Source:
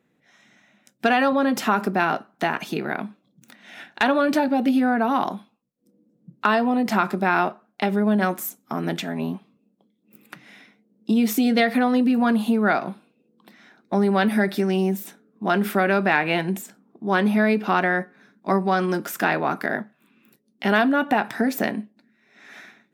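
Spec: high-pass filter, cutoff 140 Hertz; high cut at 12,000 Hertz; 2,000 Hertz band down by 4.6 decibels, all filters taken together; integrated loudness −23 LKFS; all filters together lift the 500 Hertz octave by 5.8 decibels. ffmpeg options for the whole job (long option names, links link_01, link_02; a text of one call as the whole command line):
ffmpeg -i in.wav -af "highpass=140,lowpass=12000,equalizer=frequency=500:width_type=o:gain=8,equalizer=frequency=2000:width_type=o:gain=-7,volume=-3dB" out.wav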